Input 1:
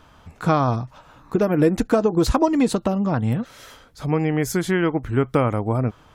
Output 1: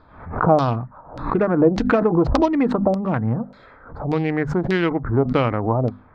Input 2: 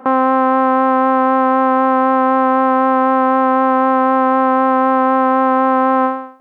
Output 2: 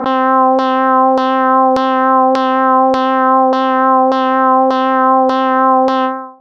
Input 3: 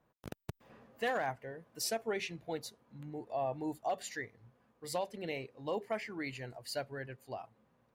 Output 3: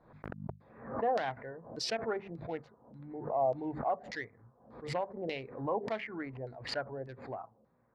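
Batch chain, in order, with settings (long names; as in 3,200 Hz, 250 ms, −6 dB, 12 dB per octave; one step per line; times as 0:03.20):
adaptive Wiener filter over 15 samples
mains-hum notches 50/100/150/200/250 Hz
dynamic equaliser 5,100 Hz, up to +5 dB, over −44 dBFS, Q 1.8
auto-filter low-pass saw down 1.7 Hz 570–4,700 Hz
background raised ahead of every attack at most 92 dB per second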